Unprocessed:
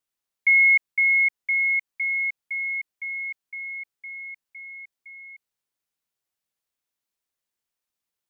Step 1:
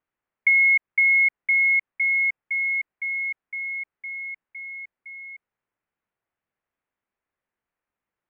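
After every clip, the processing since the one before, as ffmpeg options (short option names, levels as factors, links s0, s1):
-af "lowpass=f=2200:w=0.5412,lowpass=f=2200:w=1.3066,acompressor=threshold=0.0794:ratio=6,volume=2.11"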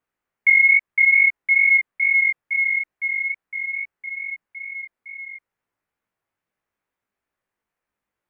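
-af "flanger=delay=17:depth=3.2:speed=2.3,volume=2"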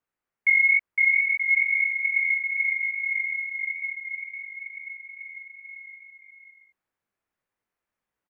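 -af "aecho=1:1:580|928|1137|1262|1337:0.631|0.398|0.251|0.158|0.1,volume=0.562"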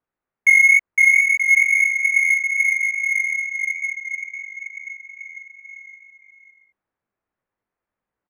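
-filter_complex "[0:a]asplit=2[s0][s1];[s1]aeval=exprs='sgn(val(0))*max(abs(val(0))-0.01,0)':c=same,volume=0.299[s2];[s0][s2]amix=inputs=2:normalize=0,adynamicsmooth=sensitivity=5.5:basefreq=2200,volume=1.68"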